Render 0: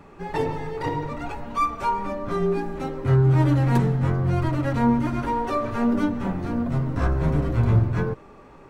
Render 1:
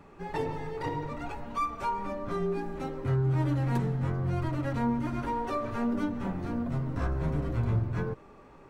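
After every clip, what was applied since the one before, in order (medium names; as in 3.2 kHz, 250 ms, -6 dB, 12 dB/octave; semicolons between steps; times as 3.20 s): compression 1.5:1, threshold -24 dBFS, peak gain reduction 4.5 dB; trim -5.5 dB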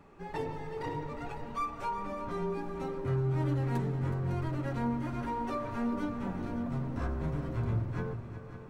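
multi-head delay 185 ms, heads second and third, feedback 49%, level -12.5 dB; trim -4 dB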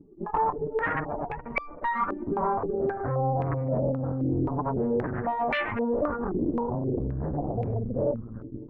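spectral contrast enhancement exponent 2.1; Chebyshev shaper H 8 -8 dB, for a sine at -22 dBFS; step-sequenced low-pass 3.8 Hz 330–2300 Hz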